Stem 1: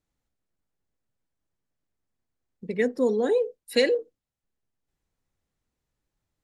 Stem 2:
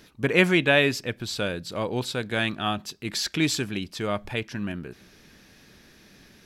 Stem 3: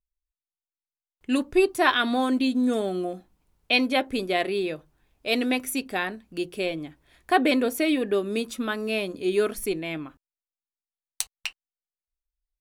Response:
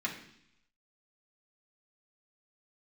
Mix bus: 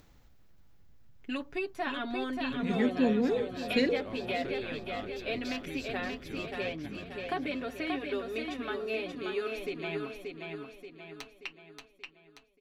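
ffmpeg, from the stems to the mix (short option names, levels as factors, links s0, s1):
-filter_complex "[0:a]asubboost=boost=8.5:cutoff=200,acompressor=mode=upward:threshold=0.0251:ratio=2.5,volume=0.501,asplit=2[s0][s1];[s1]volume=0.178[s2];[1:a]acompressor=threshold=0.0501:ratio=6,aeval=exprs='val(0)+0.00631*(sin(2*PI*60*n/s)+sin(2*PI*2*60*n/s)/2+sin(2*PI*3*60*n/s)/3+sin(2*PI*4*60*n/s)/4+sin(2*PI*5*60*n/s)/5)':c=same,adelay=2300,volume=0.2,asplit=2[s3][s4];[s4]volume=0.422[s5];[2:a]lowpass=10000,aecho=1:1:7.2:0.78,acrossover=split=650|3100[s6][s7][s8];[s6]acompressor=threshold=0.0224:ratio=4[s9];[s7]acompressor=threshold=0.0251:ratio=4[s10];[s8]acompressor=threshold=0.00501:ratio=4[s11];[s9][s10][s11]amix=inputs=3:normalize=0,volume=0.562,asplit=2[s12][s13];[s13]volume=0.596[s14];[s2][s5][s14]amix=inputs=3:normalize=0,aecho=0:1:581|1162|1743|2324|2905|3486|4067:1|0.47|0.221|0.104|0.0488|0.0229|0.0108[s15];[s0][s3][s12][s15]amix=inputs=4:normalize=0,equalizer=f=9200:t=o:w=0.72:g=-13"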